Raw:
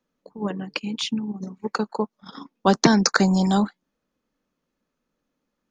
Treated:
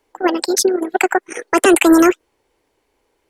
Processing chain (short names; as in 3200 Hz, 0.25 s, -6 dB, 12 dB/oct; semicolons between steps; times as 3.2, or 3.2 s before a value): speed mistake 45 rpm record played at 78 rpm; maximiser +13 dB; gain -1 dB